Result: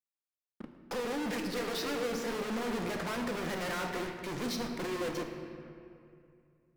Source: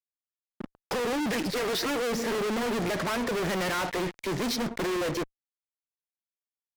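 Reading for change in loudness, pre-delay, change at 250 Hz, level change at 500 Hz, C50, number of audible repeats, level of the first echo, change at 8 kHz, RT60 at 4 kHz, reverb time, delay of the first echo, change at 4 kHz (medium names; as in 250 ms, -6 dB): -6.5 dB, 3 ms, -5.5 dB, -6.0 dB, 5.5 dB, no echo, no echo, -7.0 dB, 1.6 s, 2.4 s, no echo, -7.0 dB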